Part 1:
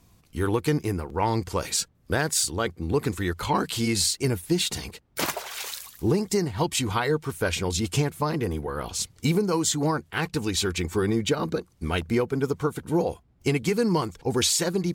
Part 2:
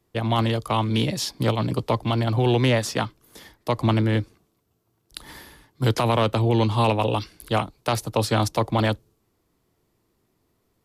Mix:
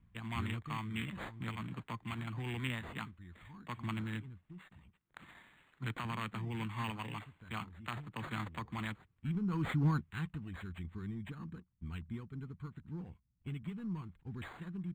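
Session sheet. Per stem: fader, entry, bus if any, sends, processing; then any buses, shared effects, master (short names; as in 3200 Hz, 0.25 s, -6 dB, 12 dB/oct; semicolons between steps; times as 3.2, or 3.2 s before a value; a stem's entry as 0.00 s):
9.96 s -3.5 dB -> 10.45 s -16 dB, 0.00 s, no send, sample leveller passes 1; auto duck -22 dB, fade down 0.90 s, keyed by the second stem
-3.5 dB, 0.00 s, no send, HPF 680 Hz 6 dB/oct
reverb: off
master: EQ curve 200 Hz 0 dB, 570 Hz -26 dB, 1100 Hz -9 dB, 3500 Hz -5 dB, 8200 Hz -22 dB; decimation joined by straight lines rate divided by 8×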